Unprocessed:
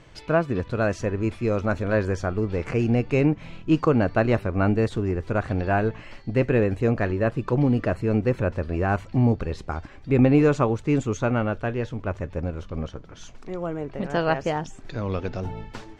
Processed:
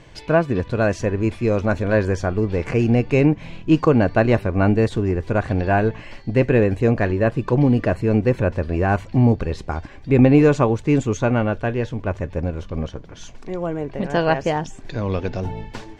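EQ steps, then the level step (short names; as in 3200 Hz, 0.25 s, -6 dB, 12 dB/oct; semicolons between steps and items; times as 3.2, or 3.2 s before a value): notch 1300 Hz, Q 8.1; +4.5 dB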